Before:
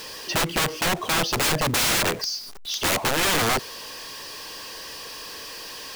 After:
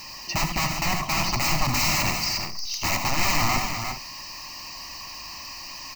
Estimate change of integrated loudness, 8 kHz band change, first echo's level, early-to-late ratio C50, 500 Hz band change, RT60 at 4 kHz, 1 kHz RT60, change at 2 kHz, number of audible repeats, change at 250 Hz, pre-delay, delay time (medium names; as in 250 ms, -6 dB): -1.5 dB, -2.0 dB, -7.0 dB, no reverb, -7.5 dB, no reverb, no reverb, -1.5 dB, 5, -1.5 dB, no reverb, 77 ms